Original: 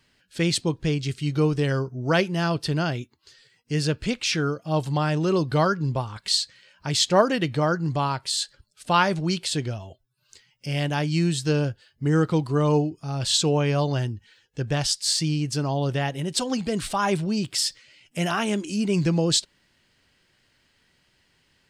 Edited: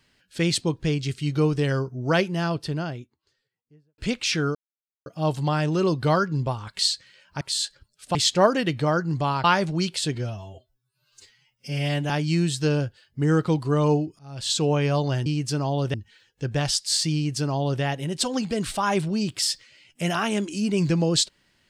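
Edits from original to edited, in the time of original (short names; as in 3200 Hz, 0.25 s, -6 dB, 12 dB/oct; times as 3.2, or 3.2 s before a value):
2.01–3.98 studio fade out
4.55 insert silence 0.51 s
8.19–8.93 move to 6.9
9.64–10.94 stretch 1.5×
13.03–13.53 fade in, from -23.5 dB
15.3–15.98 copy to 14.1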